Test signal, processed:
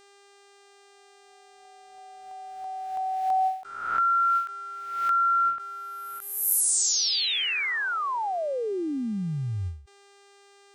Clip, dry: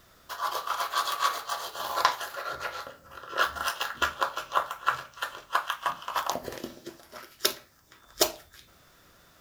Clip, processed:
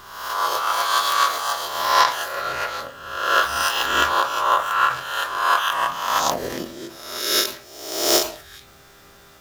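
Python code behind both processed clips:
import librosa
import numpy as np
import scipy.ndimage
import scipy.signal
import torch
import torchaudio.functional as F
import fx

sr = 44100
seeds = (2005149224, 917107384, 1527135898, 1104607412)

y = fx.spec_swells(x, sr, rise_s=0.93)
y = fx.dmg_buzz(y, sr, base_hz=400.0, harmonics=23, level_db=-62.0, tilt_db=-4, odd_only=False)
y = fx.end_taper(y, sr, db_per_s=130.0)
y = y * librosa.db_to_amplitude(6.0)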